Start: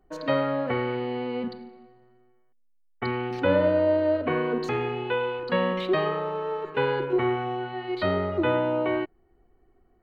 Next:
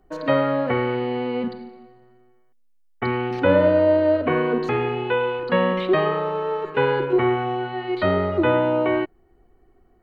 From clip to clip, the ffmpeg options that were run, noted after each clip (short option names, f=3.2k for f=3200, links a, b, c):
-filter_complex "[0:a]acrossover=split=3500[a][b];[b]acompressor=threshold=-55dB:ratio=4:attack=1:release=60[c];[a][c]amix=inputs=2:normalize=0,volume=5dB"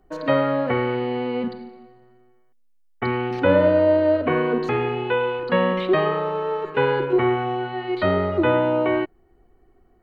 -af anull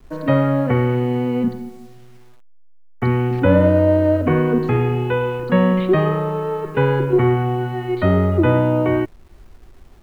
-filter_complex "[0:a]bass=f=250:g=15,treble=f=4k:g=-10,acrossover=split=210[a][b];[a]asoftclip=type=tanh:threshold=-15dB[c];[c][b]amix=inputs=2:normalize=0,acrusher=bits=8:mix=0:aa=0.000001"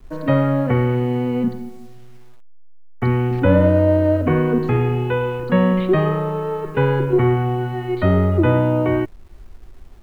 -af "lowshelf=f=62:g=6.5,volume=-1dB"